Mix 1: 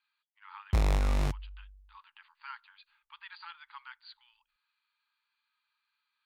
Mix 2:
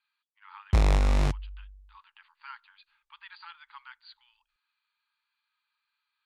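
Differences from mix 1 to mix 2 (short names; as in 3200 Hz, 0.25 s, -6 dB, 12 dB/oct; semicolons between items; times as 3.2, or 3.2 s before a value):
background +4.5 dB; master: add LPF 9700 Hz 12 dB/oct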